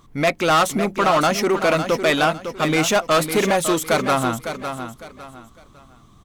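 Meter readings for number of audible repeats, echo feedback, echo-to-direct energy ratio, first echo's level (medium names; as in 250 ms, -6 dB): 3, 29%, -8.5 dB, -9.0 dB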